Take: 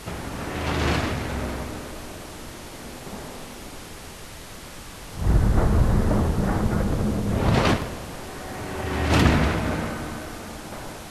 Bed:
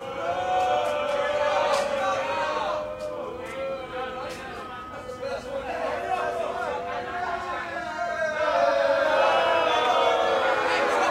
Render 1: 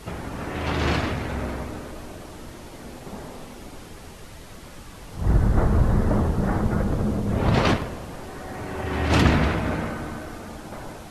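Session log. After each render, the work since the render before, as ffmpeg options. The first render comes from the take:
-af "afftdn=nr=6:nf=-40"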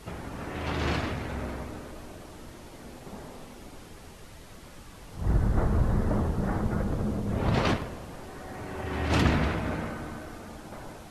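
-af "volume=-5.5dB"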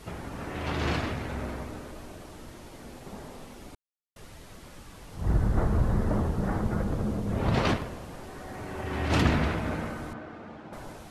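-filter_complex "[0:a]asettb=1/sr,asplit=3[a][b][c];[a]atrim=end=10.134[d];[b]atrim=start=10.13:end=10.73,asetpts=PTS-STARTPTS,afade=t=in:d=0.004:c=qsin,afade=t=out:st=0.596:d=0.004:c=qsin,highpass=110,lowpass=2.6k[e];[c]atrim=start=10.726[f];[d][e]acrossfade=d=0.004:c1=hsin:c2=qsin[g];[g][f]acrossfade=d=0.004:c1=qsin:c2=hsin,asplit=3[h][i][j];[h]atrim=end=3.75,asetpts=PTS-STARTPTS,afade=t=out:st=3.746:d=0.004:c=hsin[k];[i]atrim=start=3.75:end=4.16,asetpts=PTS-STARTPTS,volume=0[l];[j]atrim=start=4.16,asetpts=PTS-STARTPTS,afade=t=in:d=0.004:c=hsin[m];[k][l][m]concat=n=3:v=0:a=1"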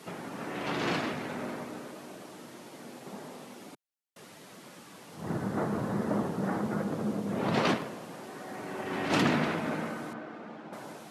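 -af "highpass=f=160:w=0.5412,highpass=f=160:w=1.3066"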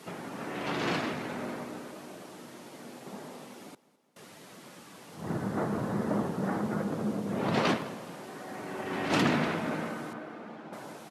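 -af "aecho=1:1:210|420|630|840:0.0891|0.0499|0.0279|0.0157"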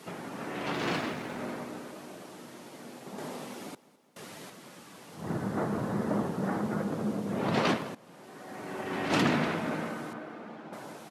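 -filter_complex "[0:a]asettb=1/sr,asplit=3[a][b][c];[a]atrim=end=0.734[d];[b]atrim=start=0.73:end=1.4,asetpts=PTS-STARTPTS,afade=t=in:d=0.004:c=qsin,afade=t=out:st=0.666:d=0.004:c=qsin,aeval=exprs='sgn(val(0))*max(abs(val(0))-0.00282,0)':c=same[e];[c]atrim=start=1.396[f];[d][e]acrossfade=d=0.004:c1=hsin:c2=qsin[g];[g][f]acrossfade=d=0.004:c1=qsin:c2=hsin,asettb=1/sr,asplit=3[h][i][j];[h]atrim=end=3.184[k];[i]atrim=start=3.18:end=4.5,asetpts=PTS-STARTPTS,afade=t=in:d=0.004:c=qsin,afade=t=out:st=1.316:d=0.004:c=qsin,acontrast=31[l];[j]atrim=start=4.496[m];[k][l]acrossfade=d=0.004:c1=hsin:c2=qsin[n];[n][m]acrossfade=d=0.004:c1=qsin:c2=hsin,asplit=2[o][p];[o]atrim=end=7.95,asetpts=PTS-STARTPTS,afade=t=out:st=7.946:d=0.004:c=hsin:silence=0.16788[q];[p]atrim=start=7.95,asetpts=PTS-STARTPTS,afade=t=in:d=0.78:silence=0.16788[r];[q][r]concat=n=2:v=0:a=1"

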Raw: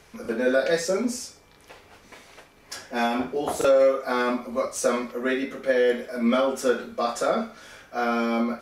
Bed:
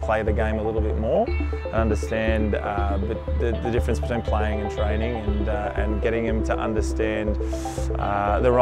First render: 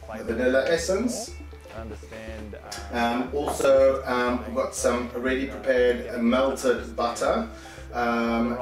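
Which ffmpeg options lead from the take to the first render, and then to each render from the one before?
-filter_complex "[1:a]volume=-15.5dB[a];[0:a][a]amix=inputs=2:normalize=0"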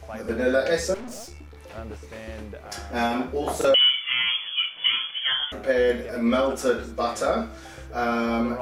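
-filter_complex "[0:a]asettb=1/sr,asplit=3[a][b][c];[a]atrim=end=0.944[d];[b]atrim=start=0.94:end=1.57,asetpts=PTS-STARTPTS,afade=t=in:d=0.004:c=qsin,afade=t=out:st=0.626:d=0.004:c=qsin,aeval=exprs='(tanh(56.2*val(0)+0.65)-tanh(0.65))/56.2':c=same[e];[c]atrim=start=1.566[f];[d][e]acrossfade=d=0.004:c1=hsin:c2=qsin[g];[g][f]acrossfade=d=0.004:c1=qsin:c2=hsin,asettb=1/sr,asplit=3[h][i][j];[h]atrim=end=3.744[k];[i]atrim=start=3.74:end=5.52,asetpts=PTS-STARTPTS,afade=t=in:d=0.004:c=qsin,afade=t=out:st=1.776:d=0.004:c=qsin,lowpass=f=3k:t=q:w=0.5098,lowpass=f=3k:t=q:w=0.6013,lowpass=f=3k:t=q:w=0.9,lowpass=f=3k:t=q:w=2.563,afreqshift=-3500[l];[j]atrim=start=5.516[m];[k][l]acrossfade=d=0.004:c1=hsin:c2=qsin[n];[n][m]acrossfade=d=0.004:c1=qsin:c2=hsin"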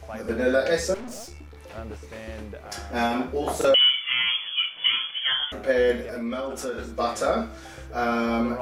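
-filter_complex "[0:a]asettb=1/sr,asplit=3[a][b][c];[a]atrim=end=6.024[d];[b]atrim=start=6.02:end=6.78,asetpts=PTS-STARTPTS,afade=t=in:d=0.004:c=qsin,afade=t=out:st=0.756:d=0.004:c=qsin,acompressor=threshold=-30dB:ratio=2.5:attack=3.2:release=140:knee=1:detection=peak[e];[c]atrim=start=6.776[f];[d][e]acrossfade=d=0.004:c1=hsin:c2=qsin[g];[g][f]acrossfade=d=0.004:c1=qsin:c2=hsin"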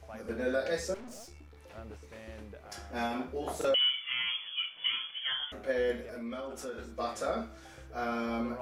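-af "volume=-9.5dB"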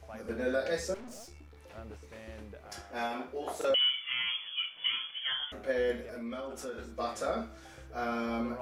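-filter_complex "[0:a]asettb=1/sr,asplit=3[a][b][c];[a]atrim=end=2.814[d];[b]atrim=start=2.81:end=3.7,asetpts=PTS-STARTPTS,afade=t=in:d=0.004:c=qsin,afade=t=out:st=0.886:d=0.004:c=qsin,bass=f=250:g=-11,treble=f=4k:g=-2[e];[c]atrim=start=3.696[f];[d][e]acrossfade=d=0.004:c1=hsin:c2=qsin[g];[g][f]acrossfade=d=0.004:c1=qsin:c2=hsin"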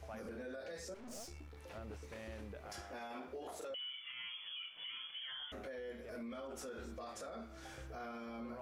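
-af "acompressor=threshold=-42dB:ratio=5,alimiter=level_in=15dB:limit=-24dB:level=0:latency=1:release=13,volume=-15dB"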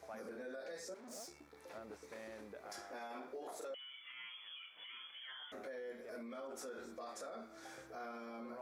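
-af "highpass=250,equalizer=f=2.9k:w=3.8:g=-8.5"

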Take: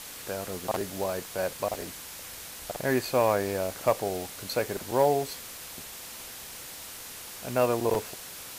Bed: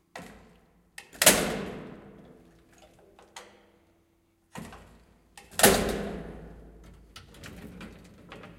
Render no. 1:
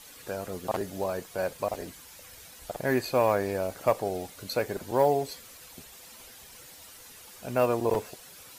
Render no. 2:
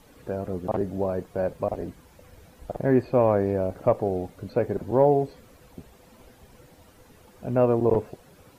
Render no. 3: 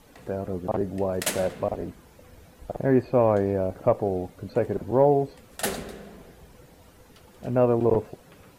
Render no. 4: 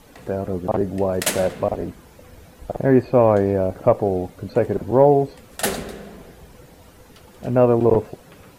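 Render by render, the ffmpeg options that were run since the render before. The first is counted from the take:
-af "afftdn=nr=10:nf=-43"
-filter_complex "[0:a]acrossover=split=3100[a][b];[b]acompressor=threshold=-51dB:ratio=4:attack=1:release=60[c];[a][c]amix=inputs=2:normalize=0,tiltshelf=f=900:g=9"
-filter_complex "[1:a]volume=-9.5dB[a];[0:a][a]amix=inputs=2:normalize=0"
-af "volume=5.5dB"

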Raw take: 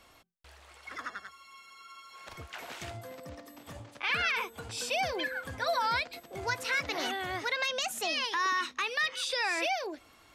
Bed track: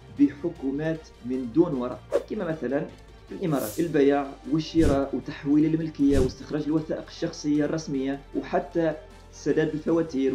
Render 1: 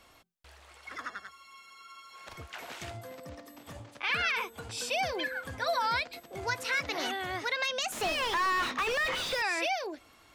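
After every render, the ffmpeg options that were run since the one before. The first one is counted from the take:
-filter_complex "[0:a]asettb=1/sr,asplit=3[a][b][c];[a]atrim=end=7.924[d];[b]atrim=start=7.92:end=9.42,asetpts=PTS-STARTPTS,afade=t=in:d=0.004:c=qsin,afade=t=out:st=1.496:d=0.004:c=qsin,asplit=2[e][f];[f]highpass=f=720:p=1,volume=34dB,asoftclip=type=tanh:threshold=-20.5dB[g];[e][g]amix=inputs=2:normalize=0,lowpass=f=1.4k:p=1,volume=-6dB[h];[c]atrim=start=9.416[i];[d][h]acrossfade=d=0.004:c1=hsin:c2=qsin[j];[j][i]acrossfade=d=0.004:c1=qsin:c2=hsin"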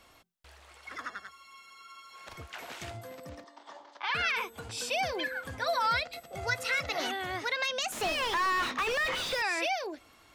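-filter_complex "[0:a]asettb=1/sr,asplit=3[a][b][c];[a]atrim=end=3.444[d];[b]atrim=start=3.44:end=4.15,asetpts=PTS-STARTPTS,afade=t=in:d=0.004:c=qsin,afade=t=out:st=0.706:d=0.004:c=qsin,highpass=f=370:w=0.5412,highpass=f=370:w=1.3066,equalizer=f=470:t=q:w=4:g=-9,equalizer=f=930:t=q:w=4:g=8,equalizer=f=2.5k:t=q:w=4:g=-9,lowpass=f=5.7k:w=0.5412,lowpass=f=5.7k:w=1.3066[e];[c]atrim=start=4.146[f];[d][e]acrossfade=d=0.004:c1=hsin:c2=qsin[g];[g][f]acrossfade=d=0.004:c1=qsin:c2=hsin,asettb=1/sr,asplit=3[h][i][j];[h]atrim=end=5.804[k];[i]atrim=start=5.8:end=7,asetpts=PTS-STARTPTS,afade=t=in:d=0.004:c=qsin,afade=t=out:st=1.196:d=0.004:c=qsin,aecho=1:1:1.5:0.58,atrim=end_sample=52920[l];[j]atrim=start=6.996[m];[k][l]acrossfade=d=0.004:c1=hsin:c2=qsin[n];[n][m]acrossfade=d=0.004:c1=qsin:c2=hsin"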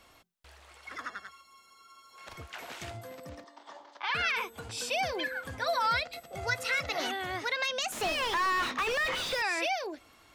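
-filter_complex "[0:a]asettb=1/sr,asplit=3[a][b][c];[a]atrim=end=1.414[d];[b]atrim=start=1.41:end=2.18,asetpts=PTS-STARTPTS,afade=t=in:d=0.004:c=qsin,afade=t=out:st=0.766:d=0.004:c=qsin,equalizer=f=2.3k:w=0.81:g=-10.5[e];[c]atrim=start=2.176[f];[d][e]acrossfade=d=0.004:c1=hsin:c2=qsin[g];[g][f]acrossfade=d=0.004:c1=qsin:c2=hsin"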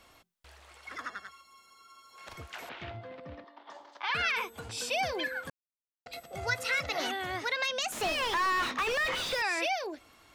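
-filter_complex "[0:a]asettb=1/sr,asplit=3[a][b][c];[a]atrim=end=2.694[d];[b]atrim=start=2.69:end=3.7,asetpts=PTS-STARTPTS,afade=t=in:d=0.004:c=qsin,afade=t=out:st=1.006:d=0.004:c=qsin,lowpass=f=3.6k:w=0.5412,lowpass=f=3.6k:w=1.3066[e];[c]atrim=start=3.696[f];[d][e]acrossfade=d=0.004:c1=hsin:c2=qsin[g];[g][f]acrossfade=d=0.004:c1=qsin:c2=hsin,asplit=3[h][i][j];[h]atrim=end=5.5,asetpts=PTS-STARTPTS,afade=t=out:st=5.496:d=0.004:c=hsin[k];[i]atrim=start=5.5:end=6.06,asetpts=PTS-STARTPTS,volume=0[l];[j]atrim=start=6.06,asetpts=PTS-STARTPTS,afade=t=in:d=0.004:c=hsin[m];[k][l][m]concat=n=3:v=0:a=1"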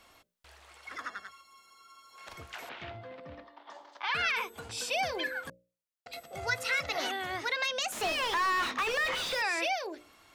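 -af "lowshelf=f=210:g=-3.5,bandreject=f=60:t=h:w=6,bandreject=f=120:t=h:w=6,bandreject=f=180:t=h:w=6,bandreject=f=240:t=h:w=6,bandreject=f=300:t=h:w=6,bandreject=f=360:t=h:w=6,bandreject=f=420:t=h:w=6,bandreject=f=480:t=h:w=6,bandreject=f=540:t=h:w=6,bandreject=f=600:t=h:w=6"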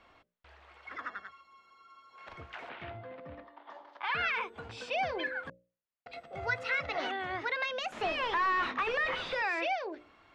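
-af "lowpass=2.6k"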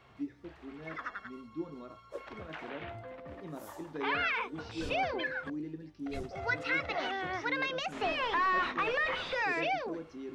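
-filter_complex "[1:a]volume=-18.5dB[a];[0:a][a]amix=inputs=2:normalize=0"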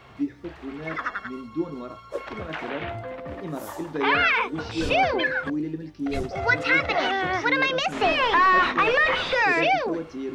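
-af "volume=11dB"

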